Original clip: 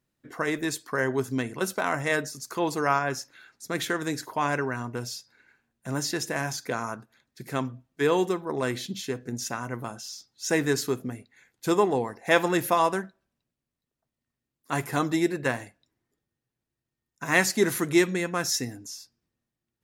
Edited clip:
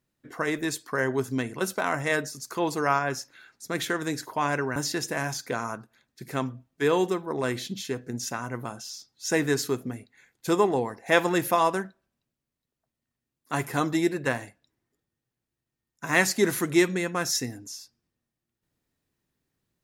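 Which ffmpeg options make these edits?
-filter_complex "[0:a]asplit=2[a][b];[a]atrim=end=4.762[c];[b]atrim=start=5.948[d];[c][d]acrossfade=d=0.004:c1=hsin:c2=hsin"

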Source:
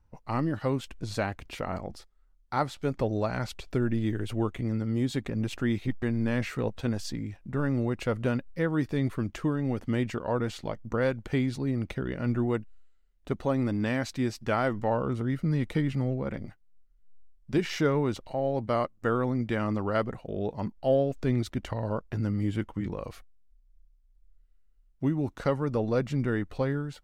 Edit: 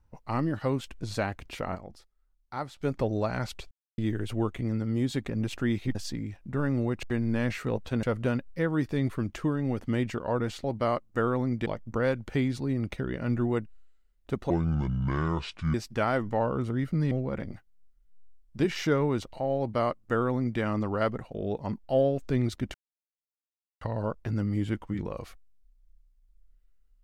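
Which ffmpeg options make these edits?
-filter_complex "[0:a]asplit=14[a][b][c][d][e][f][g][h][i][j][k][l][m][n];[a]atrim=end=1.752[o];[b]atrim=start=1.748:end=2.812,asetpts=PTS-STARTPTS,volume=-7dB[p];[c]atrim=start=2.808:end=3.71,asetpts=PTS-STARTPTS,afade=t=out:st=0.898:d=0.004:c=hsin[q];[d]atrim=start=3.71:end=3.98,asetpts=PTS-STARTPTS,volume=0[r];[e]atrim=start=3.98:end=5.952,asetpts=PTS-STARTPTS,afade=t=in:d=0.004:c=hsin[s];[f]atrim=start=6.948:end=8.032[t];[g]atrim=start=5.948:end=6.952[u];[h]atrim=start=8.028:end=10.642[v];[i]atrim=start=18.518:end=19.542[w];[j]atrim=start=10.638:end=13.484[x];[k]atrim=start=13.48:end=14.25,asetpts=PTS-STARTPTS,asetrate=27342,aresample=44100,atrim=end_sample=54769,asetpts=PTS-STARTPTS[y];[l]atrim=start=14.246:end=15.622[z];[m]atrim=start=16.048:end=21.68,asetpts=PTS-STARTPTS,afade=t=out:st=5.628:d=0.004:c=hsin,apad=pad_dur=1.07[aa];[n]atrim=start=21.68,asetpts=PTS-STARTPTS,afade=t=in:d=0.004:c=hsin[ab];[o][p]acrossfade=d=0.004:c1=hsin:c2=hsin[ac];[q][r][s]concat=n=3:v=0:a=1[ad];[ac][ad]acrossfade=d=0.004:c1=hsin:c2=hsin[ae];[ae][t]acrossfade=d=0.004:c1=hsin:c2=hsin[af];[af][u]acrossfade=d=0.004:c1=hsin:c2=hsin[ag];[ag][v]acrossfade=d=0.004:c1=hsin:c2=hsin[ah];[ah][w]acrossfade=d=0.004:c1=hsin:c2=hsin[ai];[ai][x]acrossfade=d=0.004:c1=hsin:c2=hsin[aj];[aj][y]acrossfade=d=0.004:c1=hsin:c2=hsin[ak];[ak][z]acrossfade=d=0.004:c1=hsin:c2=hsin[al];[aa][ab]concat=n=2:v=0:a=1[am];[al][am]acrossfade=d=0.004:c1=hsin:c2=hsin"

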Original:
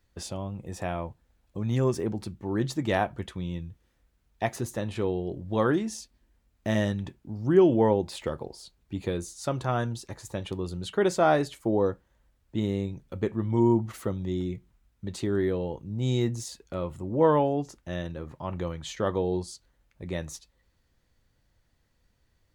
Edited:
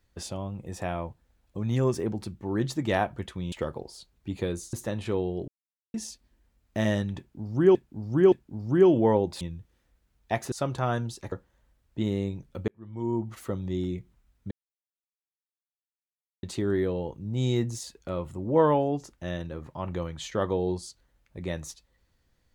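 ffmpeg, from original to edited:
-filter_complex "[0:a]asplit=12[a][b][c][d][e][f][g][h][i][j][k][l];[a]atrim=end=3.522[m];[b]atrim=start=8.168:end=9.382[n];[c]atrim=start=4.628:end=5.38,asetpts=PTS-STARTPTS,afade=t=out:st=0.748:d=0.004:c=hsin[o];[d]atrim=start=5.38:end=5.84,asetpts=PTS-STARTPTS,volume=0[p];[e]atrim=start=5.84:end=7.652,asetpts=PTS-STARTPTS,afade=t=in:d=0.004:c=hsin[q];[f]atrim=start=7.078:end=7.652[r];[g]atrim=start=7.078:end=8.172[s];[h]atrim=start=3.518:end=4.632[t];[i]atrim=start=9.378:end=10.182[u];[j]atrim=start=11.888:end=13.25,asetpts=PTS-STARTPTS,afade=t=out:st=1.358:d=0.004:c=hsin[v];[k]atrim=start=13.25:end=15.08,asetpts=PTS-STARTPTS,afade=t=in:d=1,afade=t=out:st=1.826:d=0.004:c=hsin,apad=pad_dur=1.92[w];[l]atrim=start=15.08,asetpts=PTS-STARTPTS,afade=t=in:d=0.004:c=hsin[x];[m][n]acrossfade=d=0.004:c1=hsin:c2=hsin[y];[o][p][q]concat=n=3:v=0:a=1[z];[y][z]acrossfade=d=0.004:c1=hsin:c2=hsin[aa];[aa][r]acrossfade=d=0.004:c1=hsin:c2=hsin[ab];[ab][s]acrossfade=d=0.004:c1=hsin:c2=hsin[ac];[ac][t]acrossfade=d=0.004:c1=hsin:c2=hsin[ad];[ad][u]acrossfade=d=0.004:c1=hsin:c2=hsin[ae];[v][w][x]concat=n=3:v=0:a=1[af];[ae][af]acrossfade=d=0.004:c1=hsin:c2=hsin"

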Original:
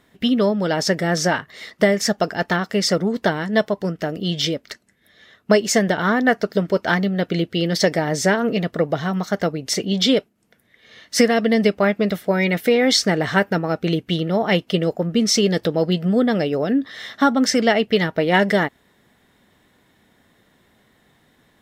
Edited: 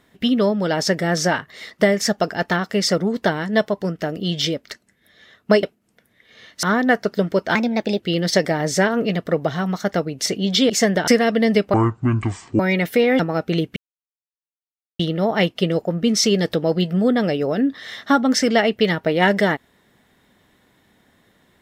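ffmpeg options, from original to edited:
-filter_complex "[0:a]asplit=11[a][b][c][d][e][f][g][h][i][j][k];[a]atrim=end=5.632[l];[b]atrim=start=10.168:end=11.172[m];[c]atrim=start=6.008:end=6.934[n];[d]atrim=start=6.93:end=7.47,asetpts=PTS-STARTPTS,asetrate=53361,aresample=44100[o];[e]atrim=start=7.466:end=10.172[p];[f]atrim=start=5.628:end=6.012[q];[g]atrim=start=11.168:end=11.834[r];[h]atrim=start=11.83:end=12.31,asetpts=PTS-STARTPTS,asetrate=24696,aresample=44100[s];[i]atrim=start=12.306:end=12.912[t];[j]atrim=start=13.538:end=14.11,asetpts=PTS-STARTPTS,afade=t=out:st=0.568:d=0.004:c=hsin,apad=pad_dur=1.23[u];[k]atrim=start=14.11,asetpts=PTS-STARTPTS,afade=t=in:d=0.004:c=hsin[v];[l][m]acrossfade=d=0.004:c1=hsin:c2=hsin[w];[w][n]acrossfade=d=0.004:c1=hsin:c2=hsin[x];[x][o]acrossfade=d=0.004:c1=hsin:c2=hsin[y];[y][p]acrossfade=d=0.004:c1=hsin:c2=hsin[z];[z][q]acrossfade=d=0.004:c1=hsin:c2=hsin[aa];[aa][r]acrossfade=d=0.004:c1=hsin:c2=hsin[ab];[ab][s]acrossfade=d=0.004:c1=hsin:c2=hsin[ac];[ac][t]acrossfade=d=0.004:c1=hsin:c2=hsin[ad];[u][v]concat=n=2:v=0:a=1[ae];[ad][ae]acrossfade=d=0.004:c1=hsin:c2=hsin"

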